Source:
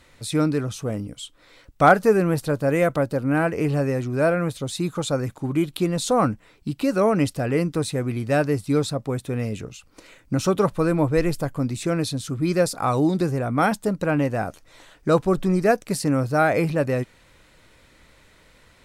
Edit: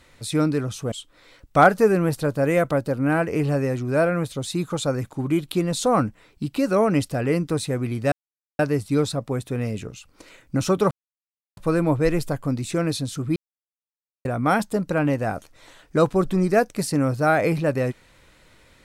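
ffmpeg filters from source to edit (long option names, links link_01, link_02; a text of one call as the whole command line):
ffmpeg -i in.wav -filter_complex "[0:a]asplit=6[link_01][link_02][link_03][link_04][link_05][link_06];[link_01]atrim=end=0.922[link_07];[link_02]atrim=start=1.168:end=8.37,asetpts=PTS-STARTPTS,afade=type=out:start_time=7.198:duration=0.004:curve=hsin,apad=pad_dur=0.47[link_08];[link_03]atrim=start=8.37:end=10.69,asetpts=PTS-STARTPTS,afade=type=in:duration=0.004:curve=hsin,afade=type=out:start_time=2.316:duration=0.004:curve=hsin,apad=pad_dur=0.66[link_09];[link_04]atrim=start=10.69:end=12.48,asetpts=PTS-STARTPTS,afade=type=in:duration=0.004:curve=hsin,afade=type=out:start_time=1.786:duration=0.004:curve=hsin[link_10];[link_05]atrim=start=12.48:end=13.37,asetpts=PTS-STARTPTS,volume=0[link_11];[link_06]atrim=start=13.37,asetpts=PTS-STARTPTS,afade=type=in:duration=0.004:curve=hsin[link_12];[link_08][link_09][link_10][link_11][link_12]concat=n=5:v=0:a=1[link_13];[link_07][link_13]acrossfade=duration=0.004:curve1=hsin:curve2=hsin" out.wav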